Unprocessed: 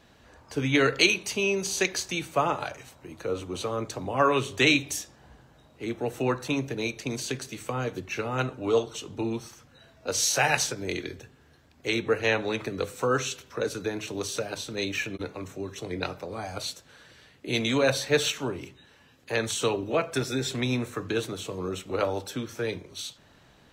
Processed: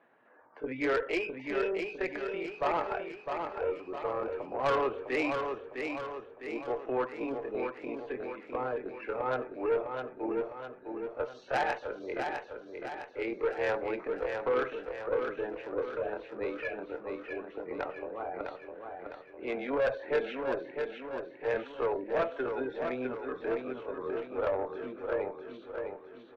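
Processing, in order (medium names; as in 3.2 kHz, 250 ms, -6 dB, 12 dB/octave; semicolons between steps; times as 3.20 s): high-pass 370 Hz 12 dB/octave; spectral gate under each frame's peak -20 dB strong; low-pass 2 kHz 24 dB/octave; dynamic bell 600 Hz, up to +5 dB, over -39 dBFS, Q 0.86; granular stretch 2×, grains 95 ms; valve stage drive 21 dB, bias 0.3; tempo 1.8×; feedback delay 656 ms, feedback 52%, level -5.5 dB; trim -2 dB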